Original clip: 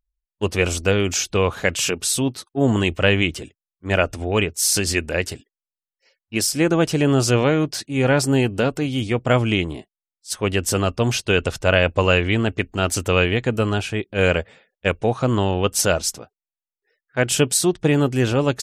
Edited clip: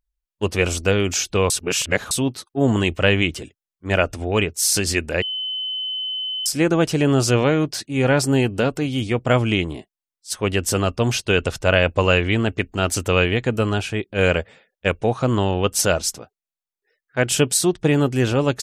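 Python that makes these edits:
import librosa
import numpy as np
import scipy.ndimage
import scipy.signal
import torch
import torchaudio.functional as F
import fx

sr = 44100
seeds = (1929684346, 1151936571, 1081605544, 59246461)

y = fx.edit(x, sr, fx.reverse_span(start_s=1.5, length_s=0.61),
    fx.bleep(start_s=5.22, length_s=1.24, hz=3040.0, db=-23.5), tone=tone)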